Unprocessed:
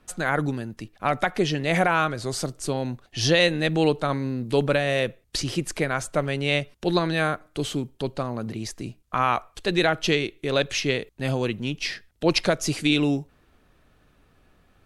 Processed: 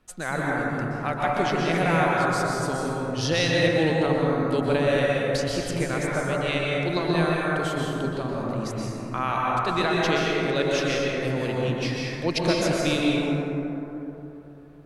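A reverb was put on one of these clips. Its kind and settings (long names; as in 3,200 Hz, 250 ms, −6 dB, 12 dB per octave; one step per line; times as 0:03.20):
dense smooth reverb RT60 3.5 s, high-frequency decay 0.3×, pre-delay 110 ms, DRR −4.5 dB
level −5.5 dB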